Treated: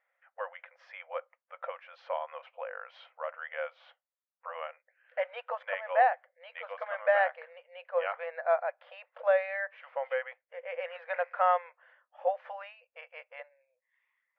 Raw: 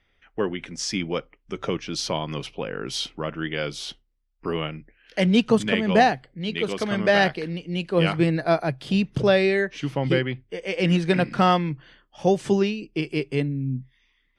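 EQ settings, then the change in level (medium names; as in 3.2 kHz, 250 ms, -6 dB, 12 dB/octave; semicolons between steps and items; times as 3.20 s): brick-wall FIR high-pass 490 Hz; low-pass 1.9 kHz 24 dB/octave; -5.0 dB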